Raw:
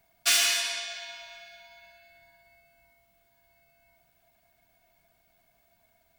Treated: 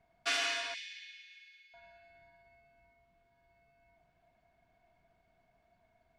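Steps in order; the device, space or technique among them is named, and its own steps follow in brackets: through cloth (LPF 6700 Hz 12 dB/oct; high shelf 2800 Hz -16 dB); 0.74–1.74 steep high-pass 1800 Hz 72 dB/oct

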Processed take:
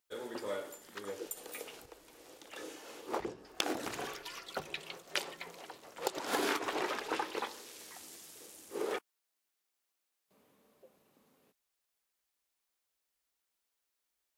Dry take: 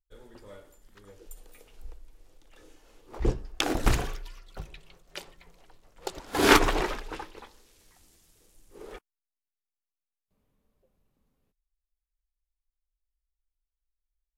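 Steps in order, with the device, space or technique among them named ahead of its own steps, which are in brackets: serial compression, peaks first (compressor 5:1, threshold -37 dBFS, peak gain reduction 21 dB; compressor 3:1, threshold -42 dBFS, peak gain reduction 8 dB); HPF 280 Hz 12 dB/oct; gain +11.5 dB

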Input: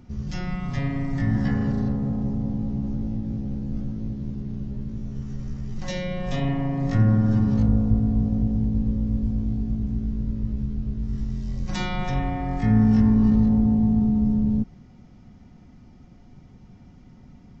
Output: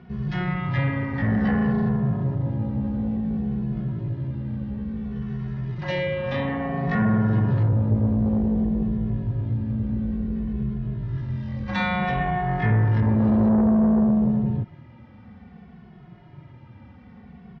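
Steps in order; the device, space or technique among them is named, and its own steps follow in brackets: barber-pole flanger into a guitar amplifier (endless flanger 2.3 ms -0.57 Hz; soft clip -21 dBFS, distortion -13 dB; speaker cabinet 91–3500 Hz, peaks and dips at 270 Hz -8 dB, 1000 Hz +4 dB, 1700 Hz +6 dB); gain +8.5 dB

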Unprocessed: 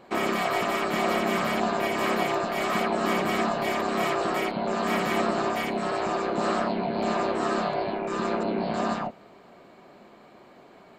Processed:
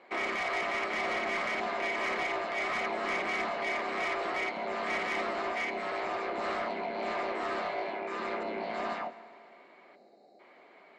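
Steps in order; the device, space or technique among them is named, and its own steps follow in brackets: spectral delete 9.96–10.4, 860–3700 Hz; intercom (BPF 370–4700 Hz; bell 2100 Hz +11.5 dB 0.28 oct; soft clip -21 dBFS, distortion -16 dB); multi-head echo 67 ms, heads second and third, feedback 59%, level -21 dB; gain -5 dB

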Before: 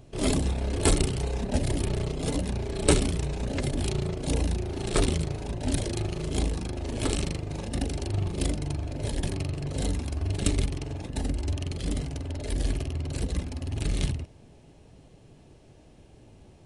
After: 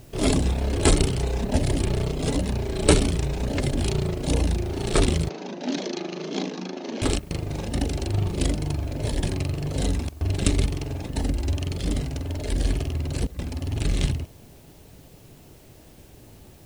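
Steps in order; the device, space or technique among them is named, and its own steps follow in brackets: worn cassette (LPF 9900 Hz; wow and flutter; level dips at 7.19/10.09/13.27, 0.116 s -15 dB; white noise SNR 33 dB); 5.29–7.02 Chebyshev band-pass 180–6400 Hz, order 5; gain +4 dB

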